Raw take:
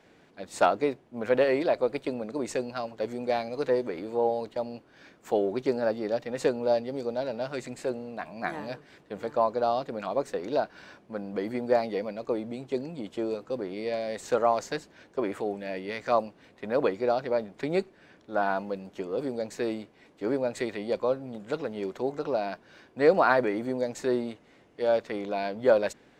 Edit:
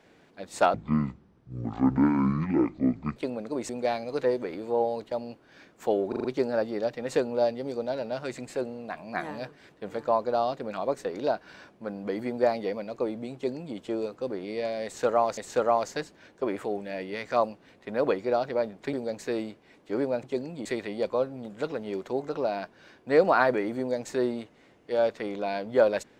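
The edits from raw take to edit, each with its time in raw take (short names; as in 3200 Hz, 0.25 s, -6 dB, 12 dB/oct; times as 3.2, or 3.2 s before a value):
0.74–2 speed 52%
2.53–3.14 cut
5.53 stutter 0.04 s, 5 plays
12.63–13.05 copy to 20.55
14.13–14.66 loop, 2 plays
17.69–19.25 cut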